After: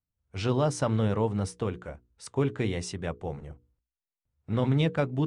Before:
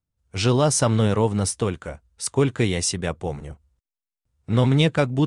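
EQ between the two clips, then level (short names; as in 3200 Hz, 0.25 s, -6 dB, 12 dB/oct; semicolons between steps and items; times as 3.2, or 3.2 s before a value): LPF 2200 Hz 6 dB/oct; notches 60/120/180/240/300/360/420/480 Hz; -6.0 dB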